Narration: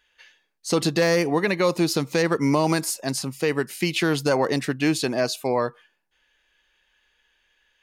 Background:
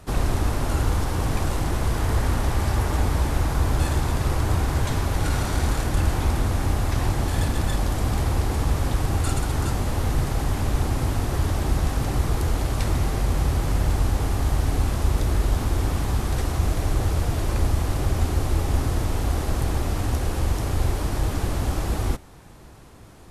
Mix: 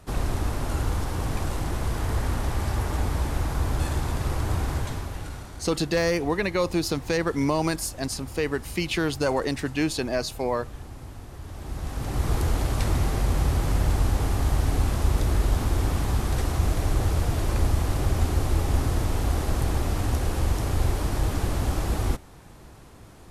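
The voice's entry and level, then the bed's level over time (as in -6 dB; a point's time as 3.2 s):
4.95 s, -3.5 dB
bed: 4.72 s -4 dB
5.55 s -17 dB
11.41 s -17 dB
12.32 s -1 dB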